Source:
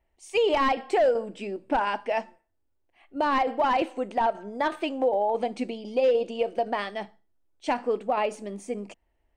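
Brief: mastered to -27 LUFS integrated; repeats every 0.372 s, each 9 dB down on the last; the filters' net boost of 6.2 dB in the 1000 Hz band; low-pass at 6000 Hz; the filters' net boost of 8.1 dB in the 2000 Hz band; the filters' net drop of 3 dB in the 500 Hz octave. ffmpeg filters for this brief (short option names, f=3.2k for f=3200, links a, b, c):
-af "lowpass=6k,equalizer=f=500:t=o:g=-6.5,equalizer=f=1k:t=o:g=8,equalizer=f=2k:t=o:g=8,aecho=1:1:372|744|1116|1488:0.355|0.124|0.0435|0.0152,volume=-4dB"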